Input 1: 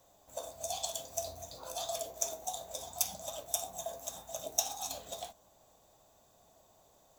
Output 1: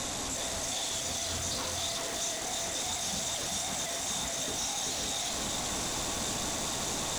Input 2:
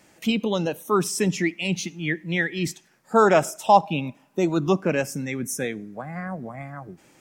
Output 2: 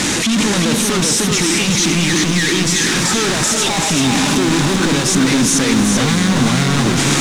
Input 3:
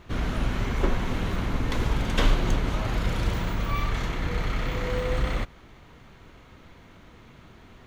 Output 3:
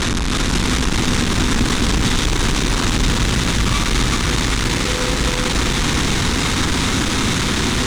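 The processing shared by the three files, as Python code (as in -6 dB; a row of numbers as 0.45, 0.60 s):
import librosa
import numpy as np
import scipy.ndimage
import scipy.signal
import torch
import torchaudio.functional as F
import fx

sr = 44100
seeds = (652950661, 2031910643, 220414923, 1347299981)

y = np.sign(x) * np.sqrt(np.mean(np.square(x)))
y = scipy.signal.sosfilt(scipy.signal.butter(4, 9900.0, 'lowpass', fs=sr, output='sos'), y)
y = fx.peak_eq(y, sr, hz=3700.0, db=5.0, octaves=0.23)
y = fx.rider(y, sr, range_db=10, speed_s=0.5)
y = fx.graphic_eq_15(y, sr, hz=(250, 630, 6300), db=(5, -8, 4))
y = y + 10.0 ** (-4.0 / 20.0) * np.pad(y, (int(384 * sr / 1000.0), 0))[:len(y)]
y = fx.echo_crushed(y, sr, ms=328, feedback_pct=80, bits=7, wet_db=-13)
y = F.gain(torch.from_numpy(y), 7.0).numpy()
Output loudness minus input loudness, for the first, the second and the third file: +6.5, +10.0, +10.5 LU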